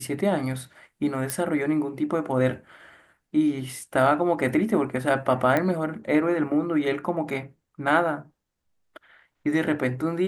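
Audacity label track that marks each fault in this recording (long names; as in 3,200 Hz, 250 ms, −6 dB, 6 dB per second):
1.300000	1.300000	click −10 dBFS
5.570000	5.570000	click −11 dBFS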